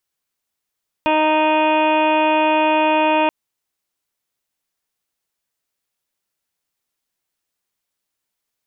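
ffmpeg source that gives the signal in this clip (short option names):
-f lavfi -i "aevalsrc='0.0944*sin(2*PI*310*t)+0.119*sin(2*PI*620*t)+0.15*sin(2*PI*930*t)+0.0266*sin(2*PI*1240*t)+0.0251*sin(2*PI*1550*t)+0.0188*sin(2*PI*1860*t)+0.0133*sin(2*PI*2170*t)+0.0668*sin(2*PI*2480*t)+0.0355*sin(2*PI*2790*t)+0.0106*sin(2*PI*3100*t)+0.015*sin(2*PI*3410*t)':d=2.23:s=44100"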